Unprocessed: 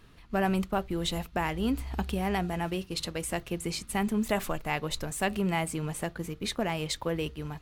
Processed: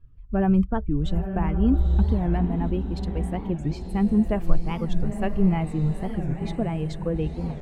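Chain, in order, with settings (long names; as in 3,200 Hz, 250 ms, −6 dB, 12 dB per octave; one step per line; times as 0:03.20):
spectral dynamics exaggerated over time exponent 1.5
spectral tilt −4.5 dB per octave
feedback delay with all-pass diffusion 924 ms, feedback 40%, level −8.5 dB
wow of a warped record 45 rpm, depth 250 cents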